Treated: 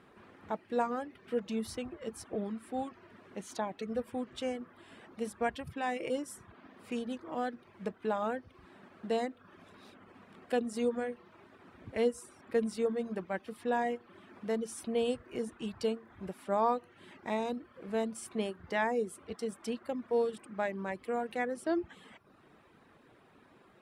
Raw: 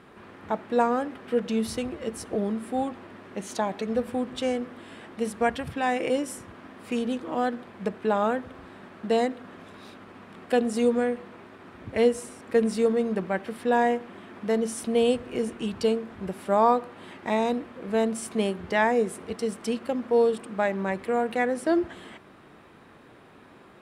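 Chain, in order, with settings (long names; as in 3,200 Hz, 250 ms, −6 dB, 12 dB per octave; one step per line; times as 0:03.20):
reverb reduction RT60 0.63 s
level −8 dB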